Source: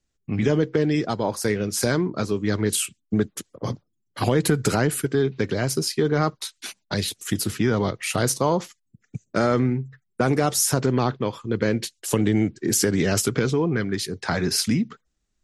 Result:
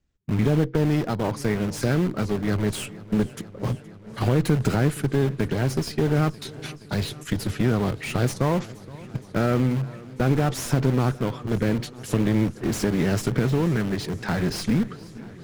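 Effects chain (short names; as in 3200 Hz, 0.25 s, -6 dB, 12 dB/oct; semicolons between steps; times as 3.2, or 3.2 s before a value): added harmonics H 4 -15 dB, 5 -23 dB, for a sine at -7 dBFS; high shelf 7400 Hz -6 dB; in parallel at -6.5 dB: wrapped overs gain 22 dB; on the sum: tone controls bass +6 dB, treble -6 dB; warbling echo 0.471 s, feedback 79%, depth 63 cents, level -20.5 dB; gain -5.5 dB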